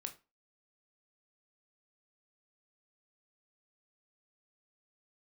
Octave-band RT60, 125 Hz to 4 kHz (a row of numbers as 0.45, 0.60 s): 0.25, 0.30, 0.30, 0.30, 0.25, 0.25 s